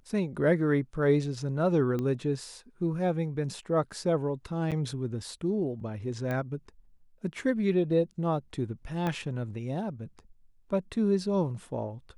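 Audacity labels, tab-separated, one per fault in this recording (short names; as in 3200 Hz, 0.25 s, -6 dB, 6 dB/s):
1.990000	1.990000	pop -21 dBFS
4.710000	4.720000	gap 7.4 ms
6.310000	6.310000	pop -21 dBFS
9.070000	9.070000	pop -18 dBFS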